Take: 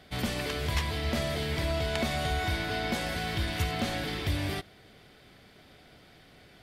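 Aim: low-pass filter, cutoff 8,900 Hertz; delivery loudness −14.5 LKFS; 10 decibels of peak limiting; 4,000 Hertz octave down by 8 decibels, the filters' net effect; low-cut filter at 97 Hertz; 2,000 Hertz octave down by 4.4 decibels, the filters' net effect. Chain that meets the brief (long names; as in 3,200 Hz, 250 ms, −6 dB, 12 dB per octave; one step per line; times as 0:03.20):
high-pass filter 97 Hz
low-pass filter 8,900 Hz
parametric band 2,000 Hz −3.5 dB
parametric band 4,000 Hz −9 dB
level +22 dB
brickwall limiter −5.5 dBFS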